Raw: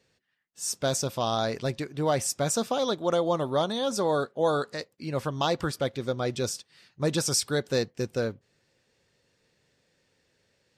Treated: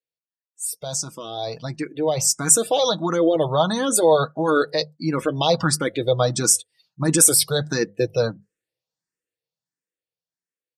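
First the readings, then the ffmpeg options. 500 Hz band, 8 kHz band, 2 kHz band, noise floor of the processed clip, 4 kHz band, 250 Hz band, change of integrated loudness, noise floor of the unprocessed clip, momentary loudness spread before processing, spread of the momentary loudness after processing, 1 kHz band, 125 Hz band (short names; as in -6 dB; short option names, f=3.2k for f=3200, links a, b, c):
+6.5 dB, +13.0 dB, +6.5 dB, under -85 dBFS, +6.5 dB, +7.0 dB, +8.5 dB, -72 dBFS, 6 LU, 14 LU, +5.0 dB, +5.5 dB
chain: -filter_complex "[0:a]alimiter=limit=-20.5dB:level=0:latency=1:release=11,bandreject=f=50:t=h:w=6,bandreject=f=100:t=h:w=6,bandreject=f=150:t=h:w=6,bandreject=f=200:t=h:w=6,aecho=1:1:6.3:0.42,afftdn=nr=27:nf=-45,lowshelf=f=120:g=-5,dynaudnorm=f=350:g=13:m=13.5dB,equalizer=f=11k:t=o:w=1:g=13,asoftclip=type=hard:threshold=-0.5dB,asplit=2[a][b];[b]afreqshift=1.5[c];[a][c]amix=inputs=2:normalize=1"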